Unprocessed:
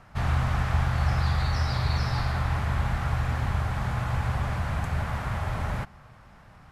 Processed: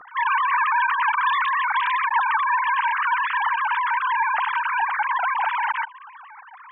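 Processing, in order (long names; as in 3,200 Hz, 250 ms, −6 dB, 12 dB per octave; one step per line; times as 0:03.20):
three sine waves on the formant tracks
level +4 dB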